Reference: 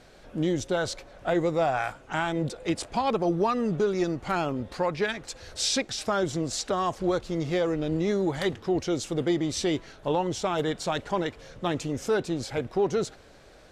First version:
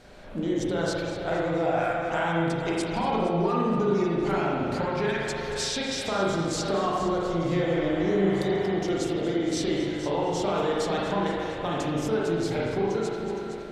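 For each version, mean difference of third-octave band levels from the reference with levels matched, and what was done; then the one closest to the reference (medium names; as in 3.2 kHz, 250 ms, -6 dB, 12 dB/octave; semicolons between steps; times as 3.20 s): 7.5 dB: on a send: multi-head delay 233 ms, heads first and second, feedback 43%, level -15 dB; on the sum: compression, threshold -28 dBFS, peak gain reduction 8.5 dB; spring tank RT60 1.6 s, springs 36/41 ms, chirp 50 ms, DRR -5 dB; spectral replace 7.67–8.65 s, 660–3500 Hz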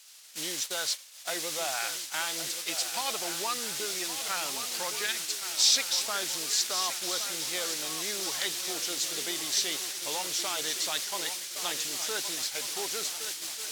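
15.5 dB: word length cut 6-bit, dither triangular; shuffle delay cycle 1490 ms, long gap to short 3:1, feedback 48%, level -10.5 dB; gate -32 dBFS, range -19 dB; band-pass filter 5.3 kHz, Q 0.83; trim +5.5 dB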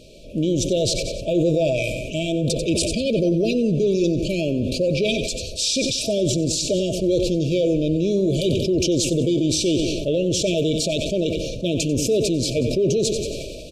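10.5 dB: FFT band-reject 670–2300 Hz; peak limiter -21 dBFS, peak gain reduction 6.5 dB; feedback delay 92 ms, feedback 48%, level -13 dB; decay stretcher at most 28 dB/s; trim +8 dB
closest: first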